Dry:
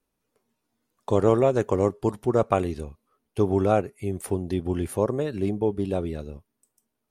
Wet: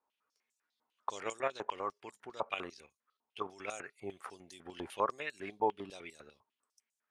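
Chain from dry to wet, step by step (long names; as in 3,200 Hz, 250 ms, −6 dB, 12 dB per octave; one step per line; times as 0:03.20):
dynamic equaliser 2,400 Hz, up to +4 dB, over −45 dBFS, Q 1.6
0:01.22–0:03.68: output level in coarse steps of 9 dB
band-pass on a step sequencer 10 Hz 910–7,200 Hz
level +7 dB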